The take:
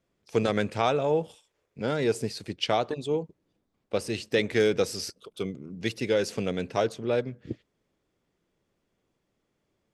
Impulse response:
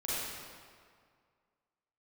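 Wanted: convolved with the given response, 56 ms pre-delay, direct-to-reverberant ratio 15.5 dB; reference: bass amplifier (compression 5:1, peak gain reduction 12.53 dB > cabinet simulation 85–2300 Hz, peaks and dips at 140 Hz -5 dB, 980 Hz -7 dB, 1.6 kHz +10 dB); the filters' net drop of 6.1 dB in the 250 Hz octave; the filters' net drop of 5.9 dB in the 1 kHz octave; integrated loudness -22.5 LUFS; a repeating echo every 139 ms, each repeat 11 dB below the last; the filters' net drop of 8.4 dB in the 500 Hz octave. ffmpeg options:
-filter_complex "[0:a]equalizer=f=250:t=o:g=-5,equalizer=f=500:t=o:g=-7.5,equalizer=f=1000:t=o:g=-4,aecho=1:1:139|278|417:0.282|0.0789|0.0221,asplit=2[s0][s1];[1:a]atrim=start_sample=2205,adelay=56[s2];[s1][s2]afir=irnorm=-1:irlink=0,volume=0.0891[s3];[s0][s3]amix=inputs=2:normalize=0,acompressor=threshold=0.0141:ratio=5,highpass=f=85:w=0.5412,highpass=f=85:w=1.3066,equalizer=f=140:t=q:w=4:g=-5,equalizer=f=980:t=q:w=4:g=-7,equalizer=f=1600:t=q:w=4:g=10,lowpass=f=2300:w=0.5412,lowpass=f=2300:w=1.3066,volume=10"

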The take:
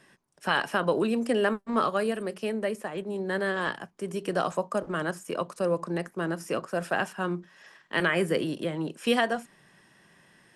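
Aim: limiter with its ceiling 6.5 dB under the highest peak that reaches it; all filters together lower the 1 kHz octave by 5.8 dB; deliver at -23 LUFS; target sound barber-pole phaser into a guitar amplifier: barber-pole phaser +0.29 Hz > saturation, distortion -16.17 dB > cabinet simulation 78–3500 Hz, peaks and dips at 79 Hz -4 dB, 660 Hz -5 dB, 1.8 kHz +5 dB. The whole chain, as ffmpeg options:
-filter_complex "[0:a]equalizer=f=1000:t=o:g=-7,alimiter=limit=0.1:level=0:latency=1,asplit=2[s0][s1];[s1]afreqshift=0.29[s2];[s0][s2]amix=inputs=2:normalize=1,asoftclip=threshold=0.0398,highpass=78,equalizer=f=79:t=q:w=4:g=-4,equalizer=f=660:t=q:w=4:g=-5,equalizer=f=1800:t=q:w=4:g=5,lowpass=f=3500:w=0.5412,lowpass=f=3500:w=1.3066,volume=5.31"

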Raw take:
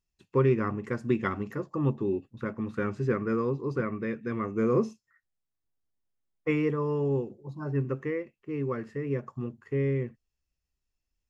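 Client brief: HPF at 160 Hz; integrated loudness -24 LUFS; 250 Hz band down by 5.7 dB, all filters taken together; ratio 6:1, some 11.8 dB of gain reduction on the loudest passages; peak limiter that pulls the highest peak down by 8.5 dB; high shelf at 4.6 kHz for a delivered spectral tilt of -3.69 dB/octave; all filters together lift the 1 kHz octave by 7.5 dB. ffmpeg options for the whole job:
-af "highpass=160,equalizer=f=250:t=o:g=-7.5,equalizer=f=1000:t=o:g=9,highshelf=f=4600:g=5,acompressor=threshold=0.0251:ratio=6,volume=5.96,alimiter=limit=0.224:level=0:latency=1"

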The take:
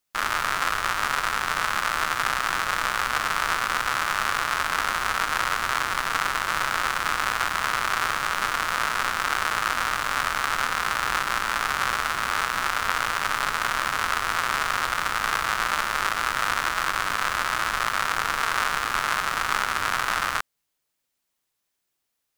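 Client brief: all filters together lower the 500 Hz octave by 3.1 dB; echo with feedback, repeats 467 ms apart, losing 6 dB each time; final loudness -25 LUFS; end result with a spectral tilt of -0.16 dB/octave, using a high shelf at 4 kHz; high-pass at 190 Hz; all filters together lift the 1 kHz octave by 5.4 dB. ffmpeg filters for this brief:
-af "highpass=190,equalizer=f=500:t=o:g=-8,equalizer=f=1000:t=o:g=8,highshelf=f=4000:g=6.5,aecho=1:1:467|934|1401|1868|2335|2802:0.501|0.251|0.125|0.0626|0.0313|0.0157,volume=0.501"

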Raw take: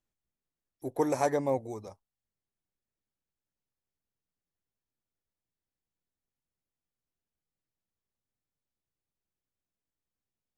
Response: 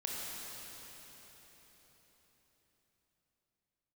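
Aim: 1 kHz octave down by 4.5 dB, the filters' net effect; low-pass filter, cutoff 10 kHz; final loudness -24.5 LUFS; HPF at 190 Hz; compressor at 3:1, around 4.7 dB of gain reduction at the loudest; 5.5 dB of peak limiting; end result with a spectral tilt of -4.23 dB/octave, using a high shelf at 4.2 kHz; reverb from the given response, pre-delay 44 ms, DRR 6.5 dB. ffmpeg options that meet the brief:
-filter_complex "[0:a]highpass=190,lowpass=10000,equalizer=f=1000:t=o:g=-7,highshelf=f=4200:g=6.5,acompressor=threshold=0.0316:ratio=3,alimiter=level_in=1.33:limit=0.0631:level=0:latency=1,volume=0.75,asplit=2[s0][s1];[1:a]atrim=start_sample=2205,adelay=44[s2];[s1][s2]afir=irnorm=-1:irlink=0,volume=0.355[s3];[s0][s3]amix=inputs=2:normalize=0,volume=5.62"

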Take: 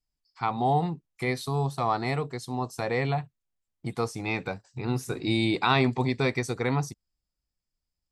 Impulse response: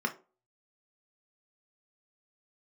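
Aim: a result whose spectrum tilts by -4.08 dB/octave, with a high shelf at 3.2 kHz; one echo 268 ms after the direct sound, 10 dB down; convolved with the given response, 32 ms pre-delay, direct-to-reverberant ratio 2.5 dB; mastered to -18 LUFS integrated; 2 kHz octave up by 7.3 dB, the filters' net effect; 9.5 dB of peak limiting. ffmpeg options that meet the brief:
-filter_complex "[0:a]equalizer=f=2000:t=o:g=7.5,highshelf=f=3200:g=3.5,alimiter=limit=0.188:level=0:latency=1,aecho=1:1:268:0.316,asplit=2[s0][s1];[1:a]atrim=start_sample=2205,adelay=32[s2];[s1][s2]afir=irnorm=-1:irlink=0,volume=0.335[s3];[s0][s3]amix=inputs=2:normalize=0,volume=2.51"

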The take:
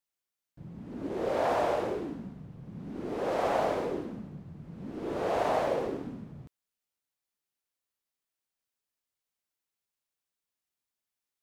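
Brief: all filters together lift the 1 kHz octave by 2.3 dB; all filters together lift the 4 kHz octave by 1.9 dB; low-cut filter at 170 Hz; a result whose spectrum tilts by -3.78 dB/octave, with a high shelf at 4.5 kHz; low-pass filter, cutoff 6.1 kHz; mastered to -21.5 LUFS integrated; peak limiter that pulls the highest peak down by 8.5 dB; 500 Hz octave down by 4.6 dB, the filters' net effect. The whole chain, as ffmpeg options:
-af "highpass=170,lowpass=6100,equalizer=f=500:t=o:g=-8.5,equalizer=f=1000:t=o:g=7,equalizer=f=4000:t=o:g=7,highshelf=f=4500:g=-8.5,volume=5.62,alimiter=limit=0.335:level=0:latency=1"

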